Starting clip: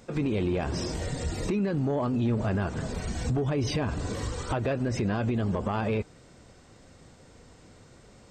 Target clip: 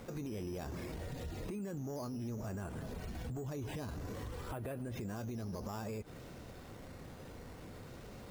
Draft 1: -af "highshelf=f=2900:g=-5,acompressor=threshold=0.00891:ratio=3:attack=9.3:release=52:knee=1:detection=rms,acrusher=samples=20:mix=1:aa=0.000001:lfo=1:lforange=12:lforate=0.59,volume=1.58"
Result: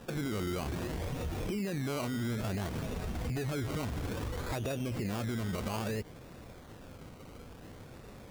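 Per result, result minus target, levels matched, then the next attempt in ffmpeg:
compression: peak gain reduction -6.5 dB; decimation with a swept rate: distortion +8 dB
-af "highshelf=f=2900:g=-5,acompressor=threshold=0.00282:ratio=3:attack=9.3:release=52:knee=1:detection=rms,acrusher=samples=20:mix=1:aa=0.000001:lfo=1:lforange=12:lforate=0.59,volume=1.58"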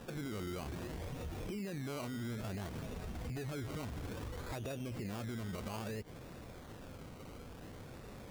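decimation with a swept rate: distortion +9 dB
-af "highshelf=f=2900:g=-5,acompressor=threshold=0.00282:ratio=3:attack=9.3:release=52:knee=1:detection=rms,acrusher=samples=6:mix=1:aa=0.000001:lfo=1:lforange=3.6:lforate=0.59,volume=1.58"

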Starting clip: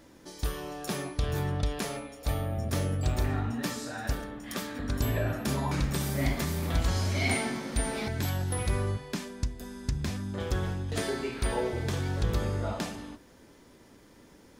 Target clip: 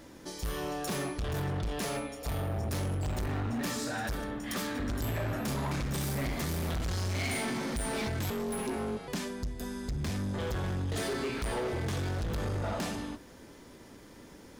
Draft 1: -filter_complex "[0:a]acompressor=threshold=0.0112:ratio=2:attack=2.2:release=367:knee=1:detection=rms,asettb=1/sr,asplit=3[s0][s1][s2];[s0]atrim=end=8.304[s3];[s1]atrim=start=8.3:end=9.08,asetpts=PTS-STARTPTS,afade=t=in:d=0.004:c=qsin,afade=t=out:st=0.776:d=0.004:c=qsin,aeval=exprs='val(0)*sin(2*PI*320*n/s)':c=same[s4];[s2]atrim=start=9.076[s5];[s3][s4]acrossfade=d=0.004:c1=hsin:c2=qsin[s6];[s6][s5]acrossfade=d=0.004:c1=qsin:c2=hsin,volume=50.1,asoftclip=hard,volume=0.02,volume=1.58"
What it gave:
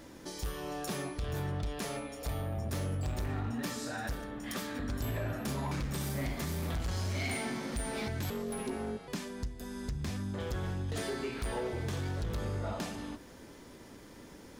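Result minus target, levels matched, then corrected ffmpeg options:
compression: peak gain reduction +5.5 dB
-filter_complex "[0:a]acompressor=threshold=0.0398:ratio=2:attack=2.2:release=367:knee=1:detection=rms,asettb=1/sr,asplit=3[s0][s1][s2];[s0]atrim=end=8.304[s3];[s1]atrim=start=8.3:end=9.08,asetpts=PTS-STARTPTS,afade=t=in:d=0.004:c=qsin,afade=t=out:st=0.776:d=0.004:c=qsin,aeval=exprs='val(0)*sin(2*PI*320*n/s)':c=same[s4];[s2]atrim=start=9.076[s5];[s3][s4]acrossfade=d=0.004:c1=hsin:c2=qsin[s6];[s6][s5]acrossfade=d=0.004:c1=qsin:c2=hsin,volume=50.1,asoftclip=hard,volume=0.02,volume=1.58"

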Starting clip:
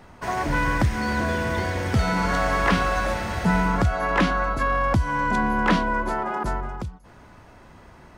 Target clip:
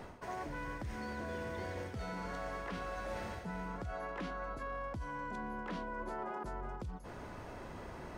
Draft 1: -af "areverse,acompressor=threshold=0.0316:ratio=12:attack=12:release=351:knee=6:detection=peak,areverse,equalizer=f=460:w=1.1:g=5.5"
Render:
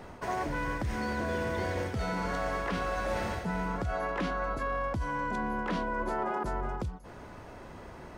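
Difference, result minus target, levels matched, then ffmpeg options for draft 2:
compression: peak gain reduction -9 dB
-af "areverse,acompressor=threshold=0.01:ratio=12:attack=12:release=351:knee=6:detection=peak,areverse,equalizer=f=460:w=1.1:g=5.5"

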